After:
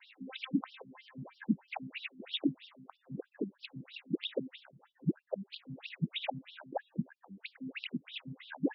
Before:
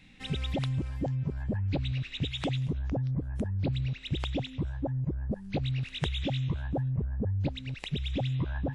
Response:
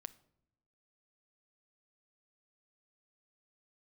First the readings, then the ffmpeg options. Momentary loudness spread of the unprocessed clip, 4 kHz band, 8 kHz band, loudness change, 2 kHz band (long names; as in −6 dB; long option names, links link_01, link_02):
3 LU, −4.5 dB, can't be measured, −7.5 dB, −3.0 dB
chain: -filter_complex "[0:a]acrossover=split=3500[link_01][link_02];[link_02]acompressor=threshold=-55dB:ratio=4:attack=1:release=60[link_03];[link_01][link_03]amix=inputs=2:normalize=0,afftfilt=real='re*between(b*sr/1024,220*pow(4100/220,0.5+0.5*sin(2*PI*3.1*pts/sr))/1.41,220*pow(4100/220,0.5+0.5*sin(2*PI*3.1*pts/sr))*1.41)':imag='im*between(b*sr/1024,220*pow(4100/220,0.5+0.5*sin(2*PI*3.1*pts/sr))/1.41,220*pow(4100/220,0.5+0.5*sin(2*PI*3.1*pts/sr))*1.41)':win_size=1024:overlap=0.75,volume=5.5dB"